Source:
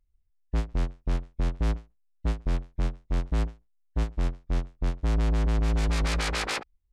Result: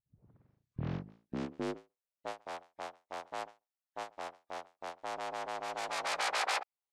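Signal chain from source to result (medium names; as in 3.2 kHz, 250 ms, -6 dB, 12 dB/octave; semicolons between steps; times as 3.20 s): tape start-up on the opening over 1.81 s; high-pass sweep 120 Hz -> 730 Hz, 0.76–2.40 s; trim -4.5 dB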